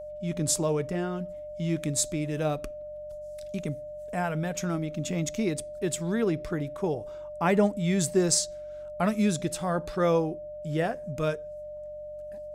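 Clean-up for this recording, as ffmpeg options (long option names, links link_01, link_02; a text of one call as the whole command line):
ffmpeg -i in.wav -af "bandreject=frequency=46.3:width_type=h:width=4,bandreject=frequency=92.6:width_type=h:width=4,bandreject=frequency=138.9:width_type=h:width=4,bandreject=frequency=185.2:width_type=h:width=4,bandreject=frequency=600:width=30" out.wav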